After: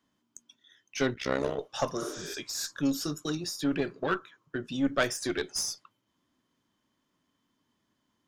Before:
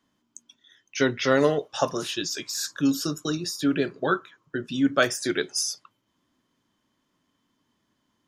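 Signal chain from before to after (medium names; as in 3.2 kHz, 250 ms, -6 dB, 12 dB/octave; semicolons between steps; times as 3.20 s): single-diode clipper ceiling -20 dBFS; 1.14–1.59 s: AM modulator 65 Hz, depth 85%; 2.04–2.32 s: spectral replace 240–8300 Hz both; trim -3.5 dB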